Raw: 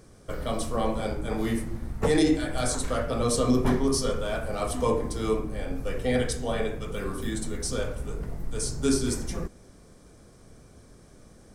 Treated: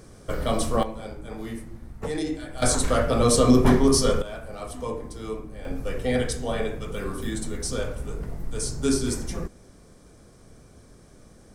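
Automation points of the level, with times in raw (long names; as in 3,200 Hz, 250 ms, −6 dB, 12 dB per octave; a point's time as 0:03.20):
+5 dB
from 0:00.83 −7 dB
from 0:02.62 +6 dB
from 0:04.22 −6.5 dB
from 0:05.65 +1 dB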